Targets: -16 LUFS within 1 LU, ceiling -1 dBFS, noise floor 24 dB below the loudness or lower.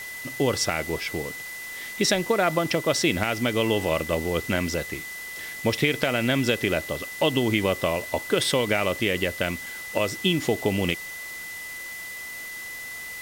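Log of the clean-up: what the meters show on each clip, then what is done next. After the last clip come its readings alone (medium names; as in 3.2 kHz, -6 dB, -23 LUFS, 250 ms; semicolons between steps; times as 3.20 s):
steady tone 2 kHz; tone level -35 dBFS; noise floor -37 dBFS; noise floor target -50 dBFS; loudness -25.5 LUFS; peak level -8.5 dBFS; loudness target -16.0 LUFS
-> band-stop 2 kHz, Q 30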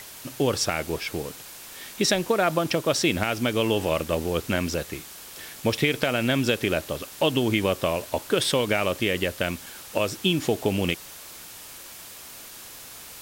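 steady tone not found; noise floor -43 dBFS; noise floor target -49 dBFS
-> noise reduction 6 dB, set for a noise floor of -43 dBFS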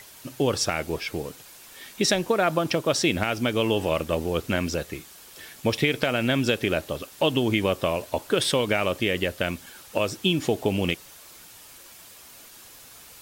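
noise floor -48 dBFS; noise floor target -49 dBFS
-> noise reduction 6 dB, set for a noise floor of -48 dBFS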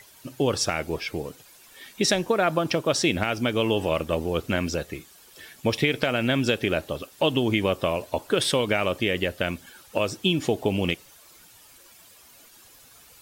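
noise floor -52 dBFS; loudness -25.0 LUFS; peak level -9.0 dBFS; loudness target -16.0 LUFS
-> trim +9 dB; peak limiter -1 dBFS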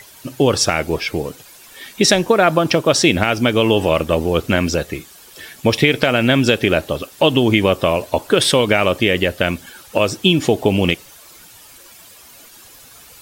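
loudness -16.5 LUFS; peak level -1.0 dBFS; noise floor -43 dBFS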